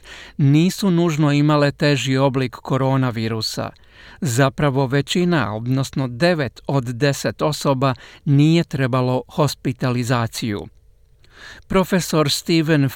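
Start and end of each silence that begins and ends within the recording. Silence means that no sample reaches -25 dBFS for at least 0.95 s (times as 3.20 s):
10.64–11.71 s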